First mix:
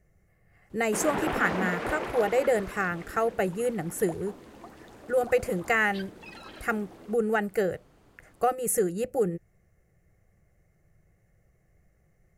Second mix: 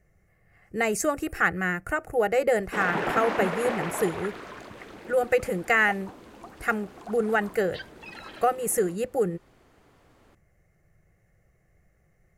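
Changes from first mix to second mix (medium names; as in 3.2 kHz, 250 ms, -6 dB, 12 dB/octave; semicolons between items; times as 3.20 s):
background: entry +1.80 s; master: add peaking EQ 1.7 kHz +3.5 dB 2.6 oct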